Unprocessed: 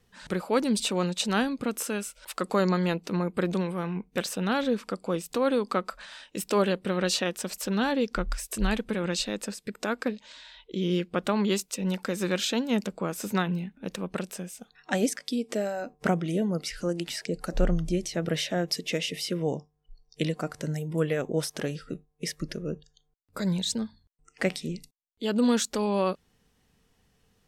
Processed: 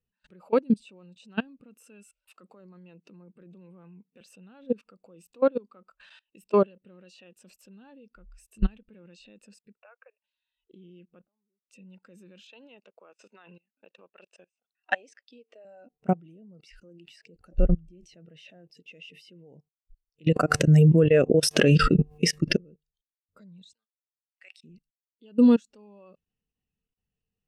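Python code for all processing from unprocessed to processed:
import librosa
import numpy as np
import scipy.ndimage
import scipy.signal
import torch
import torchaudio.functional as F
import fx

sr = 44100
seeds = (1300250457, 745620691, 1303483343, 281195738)

y = fx.chain(x, sr, fx.highpass(hz=130.0, slope=24),
    fx.over_compress(threshold_db=-29.0, ratio=-1.0), at=(2.31, 4.21))
y = fx.chain(y, sr, fx.ellip_bandpass(low_hz=550.0, high_hz=2600.0, order=3, stop_db=50),
    fx.upward_expand(threshold_db=-41.0, expansion=1.5), at=(9.77, 10.24))
y = fx.chain(y, sr, fx.lowpass_res(hz=970.0, q=1.6),
    fx.gate_flip(shuts_db=-29.0, range_db=-28), at=(11.24, 11.65))
y = fx.chain(y, sr, fx.transient(attack_db=5, sustain_db=-4),
    fx.bandpass_edges(low_hz=500.0, high_hz=5200.0), at=(12.47, 15.65))
y = fx.chain(y, sr, fx.highpass(hz=48.0, slope=6),
    fx.dynamic_eq(hz=890.0, q=5.6, threshold_db=-55.0, ratio=4.0, max_db=-6),
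    fx.env_flatten(amount_pct=100), at=(20.26, 22.57))
y = fx.chain(y, sr, fx.highpass(hz=1300.0, slope=12),
    fx.level_steps(step_db=14), at=(23.73, 24.64))
y = fx.level_steps(y, sr, step_db=23)
y = fx.peak_eq(y, sr, hz=2700.0, db=9.5, octaves=0.2)
y = fx.spectral_expand(y, sr, expansion=1.5)
y = y * librosa.db_to_amplitude(-2.5)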